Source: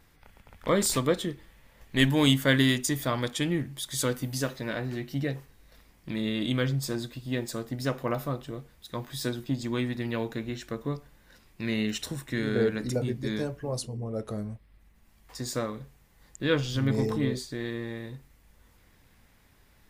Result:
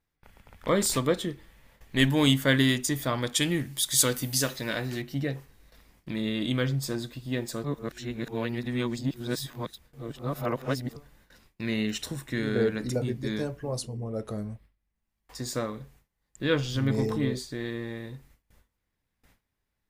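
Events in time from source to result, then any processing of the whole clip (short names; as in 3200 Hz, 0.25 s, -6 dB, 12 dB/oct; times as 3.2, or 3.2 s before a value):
3.34–5.02 high shelf 2600 Hz +10.5 dB
7.64–10.96 reverse
whole clip: gate with hold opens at -47 dBFS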